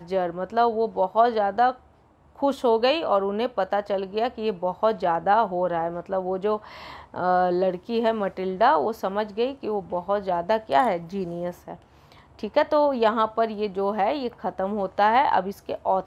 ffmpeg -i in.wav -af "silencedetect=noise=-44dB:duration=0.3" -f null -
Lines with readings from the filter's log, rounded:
silence_start: 1.83
silence_end: 2.36 | silence_duration: 0.52